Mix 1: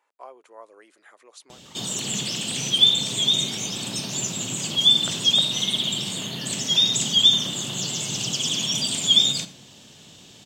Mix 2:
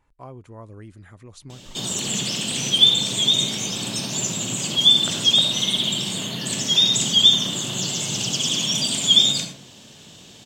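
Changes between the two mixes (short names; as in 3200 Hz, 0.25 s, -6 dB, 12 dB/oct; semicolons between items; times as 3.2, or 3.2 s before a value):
speech: remove HPF 460 Hz 24 dB/oct; background: send +10.5 dB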